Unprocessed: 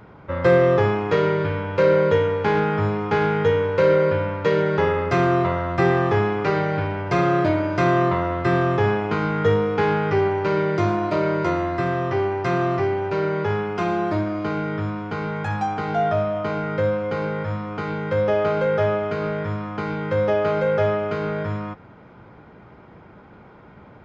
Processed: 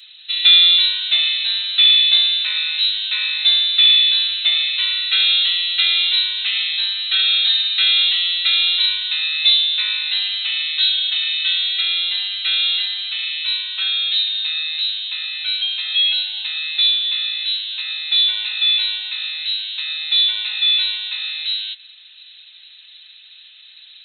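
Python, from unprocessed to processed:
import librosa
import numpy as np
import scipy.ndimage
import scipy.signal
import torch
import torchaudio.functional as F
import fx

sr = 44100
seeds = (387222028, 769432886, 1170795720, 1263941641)

y = fx.freq_invert(x, sr, carrier_hz=4000)
y = scipy.signal.sosfilt(scipy.signal.butter(2, 1300.0, 'highpass', fs=sr, output='sos'), y)
y = y + 0.91 * np.pad(y, (int(4.6 * sr / 1000.0), 0))[:len(y)]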